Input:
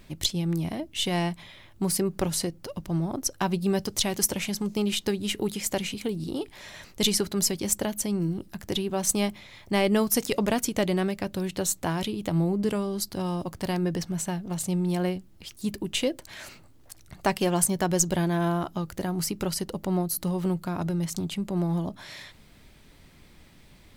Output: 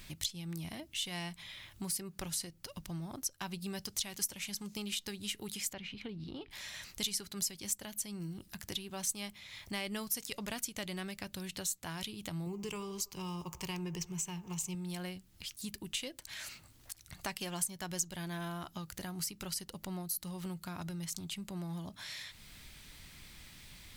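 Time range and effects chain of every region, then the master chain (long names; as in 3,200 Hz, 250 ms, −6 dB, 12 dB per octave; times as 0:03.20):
0:05.73–0:06.51: high-frequency loss of the air 320 metres + one half of a high-frequency compander encoder only
0:12.46–0:14.75: EQ curve with evenly spaced ripples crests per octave 0.74, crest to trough 11 dB + delay with a band-pass on its return 78 ms, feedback 66%, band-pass 740 Hz, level −15.5 dB
whole clip: guitar amp tone stack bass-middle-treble 5-5-5; downward compressor 2 to 1, threshold −60 dBFS; level +13 dB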